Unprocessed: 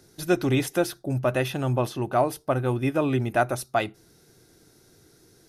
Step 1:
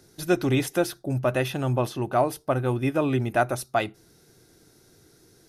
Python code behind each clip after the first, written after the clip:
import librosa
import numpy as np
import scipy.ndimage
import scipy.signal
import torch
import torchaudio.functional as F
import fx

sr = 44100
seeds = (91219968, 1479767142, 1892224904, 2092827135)

y = x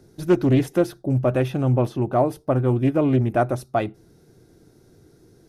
y = fx.tilt_shelf(x, sr, db=6.5, hz=970.0)
y = fx.doppler_dist(y, sr, depth_ms=0.23)